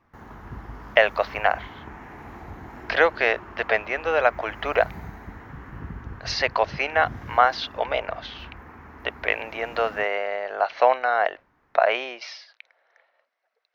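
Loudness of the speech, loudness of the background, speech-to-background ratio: -24.0 LUFS, -41.5 LUFS, 17.5 dB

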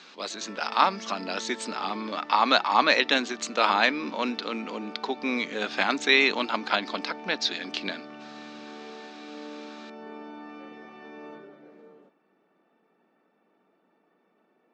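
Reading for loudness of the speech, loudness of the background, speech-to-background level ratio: -25.5 LUFS, -43.5 LUFS, 18.0 dB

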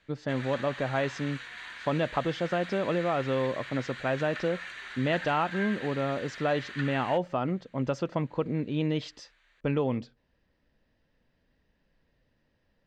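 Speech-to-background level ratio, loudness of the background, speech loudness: 9.5 dB, -40.0 LUFS, -30.5 LUFS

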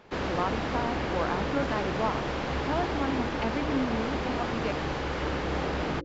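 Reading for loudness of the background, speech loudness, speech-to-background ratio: -31.0 LUFS, -33.5 LUFS, -2.5 dB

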